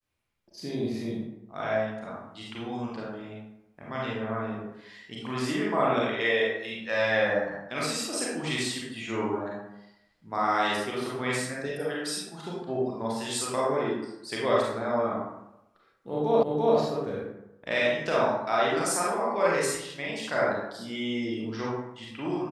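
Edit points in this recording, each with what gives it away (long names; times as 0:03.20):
0:16.43: the same again, the last 0.34 s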